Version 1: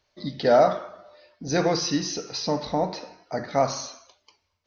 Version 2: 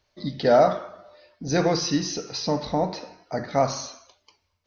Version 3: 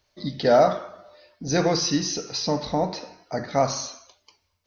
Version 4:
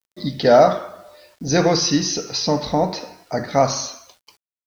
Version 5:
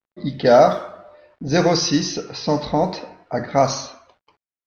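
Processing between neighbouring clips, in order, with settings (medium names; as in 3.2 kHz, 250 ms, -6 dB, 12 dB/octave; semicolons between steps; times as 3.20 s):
bass shelf 190 Hz +4.5 dB
treble shelf 6.1 kHz +7 dB
bit crusher 10-bit; trim +5 dB
level-controlled noise filter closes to 1.5 kHz, open at -10.5 dBFS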